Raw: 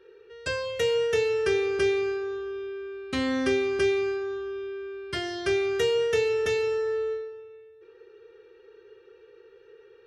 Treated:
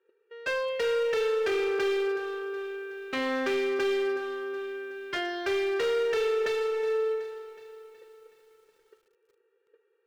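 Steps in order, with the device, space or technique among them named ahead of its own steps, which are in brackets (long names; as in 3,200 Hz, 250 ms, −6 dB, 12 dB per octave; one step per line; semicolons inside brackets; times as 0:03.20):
walkie-talkie (band-pass filter 420–2,700 Hz; hard clipping −28.5 dBFS, distortion −10 dB; noise gate −50 dBFS, range −19 dB)
feedback echo at a low word length 371 ms, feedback 55%, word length 10 bits, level −13.5 dB
level +3.5 dB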